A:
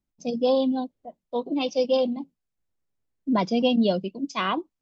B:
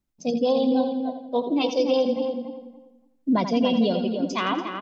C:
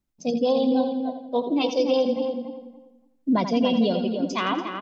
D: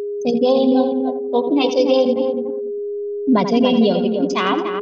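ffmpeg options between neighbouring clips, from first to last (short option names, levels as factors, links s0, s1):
-filter_complex "[0:a]asplit=2[s0][s1];[s1]aecho=0:1:84|168|252|336|420:0.316|0.142|0.064|0.0288|0.013[s2];[s0][s2]amix=inputs=2:normalize=0,alimiter=limit=0.15:level=0:latency=1:release=279,asplit=2[s3][s4];[s4]adelay=286,lowpass=f=2000:p=1,volume=0.501,asplit=2[s5][s6];[s6]adelay=286,lowpass=f=2000:p=1,volume=0.22,asplit=2[s7][s8];[s8]adelay=286,lowpass=f=2000:p=1,volume=0.22[s9];[s5][s7][s9]amix=inputs=3:normalize=0[s10];[s3][s10]amix=inputs=2:normalize=0,volume=1.41"
-af anull
-af "anlmdn=3.98,aeval=exprs='val(0)+0.0398*sin(2*PI*410*n/s)':c=same,volume=2"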